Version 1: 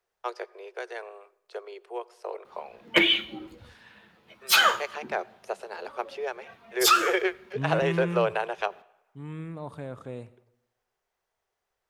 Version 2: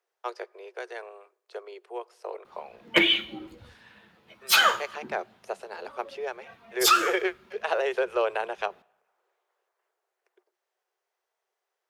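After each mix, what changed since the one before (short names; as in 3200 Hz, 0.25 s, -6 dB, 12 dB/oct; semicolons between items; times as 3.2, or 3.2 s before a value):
first voice: send -8.5 dB; second voice: muted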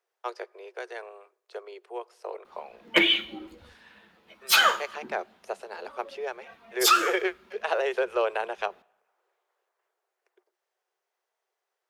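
master: add bell 120 Hz -14 dB 0.53 oct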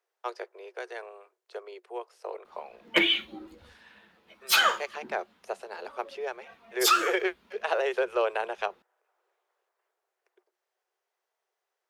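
reverb: off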